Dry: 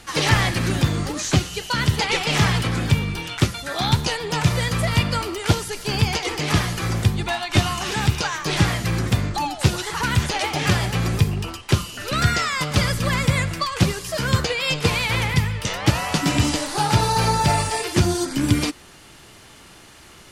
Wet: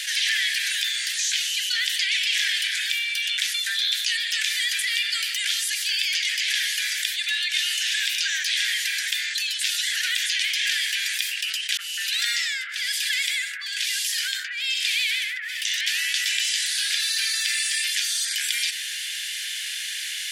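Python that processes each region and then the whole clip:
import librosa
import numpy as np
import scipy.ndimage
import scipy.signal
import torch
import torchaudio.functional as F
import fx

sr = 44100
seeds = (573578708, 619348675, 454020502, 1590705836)

y = fx.chain(x, sr, fx.echo_wet_highpass(ms=64, feedback_pct=66, hz=4000.0, wet_db=-7.5),
    fx.harmonic_tremolo(hz=1.1, depth_pct=100, crossover_hz=1100.0), at=(11.77, 15.81))
y = scipy.signal.sosfilt(scipy.signal.butter(16, 1600.0, 'highpass', fs=sr, output='sos'), y)
y = fx.peak_eq(y, sr, hz=3400.0, db=5.5, octaves=0.33)
y = fx.env_flatten(y, sr, amount_pct=70)
y = y * librosa.db_to_amplitude(-3.0)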